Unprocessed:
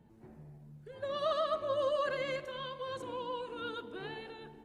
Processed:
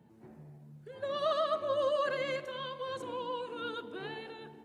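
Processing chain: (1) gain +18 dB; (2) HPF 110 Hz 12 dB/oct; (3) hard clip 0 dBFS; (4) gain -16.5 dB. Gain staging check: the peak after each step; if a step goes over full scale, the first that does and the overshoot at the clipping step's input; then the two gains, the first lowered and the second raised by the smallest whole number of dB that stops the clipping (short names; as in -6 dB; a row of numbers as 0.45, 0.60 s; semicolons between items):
-4.0, -3.5, -3.5, -20.0 dBFS; no overload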